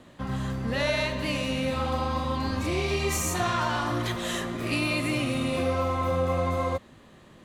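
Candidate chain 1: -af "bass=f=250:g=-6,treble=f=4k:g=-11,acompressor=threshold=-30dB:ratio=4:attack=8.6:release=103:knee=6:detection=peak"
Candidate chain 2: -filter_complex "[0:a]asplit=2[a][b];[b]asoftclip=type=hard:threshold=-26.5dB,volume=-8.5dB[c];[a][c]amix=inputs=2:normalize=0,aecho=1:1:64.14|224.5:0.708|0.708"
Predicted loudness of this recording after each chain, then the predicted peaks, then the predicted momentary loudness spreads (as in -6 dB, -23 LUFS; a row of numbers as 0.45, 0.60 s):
-33.0, -23.0 LUFS; -20.0, -9.5 dBFS; 3, 4 LU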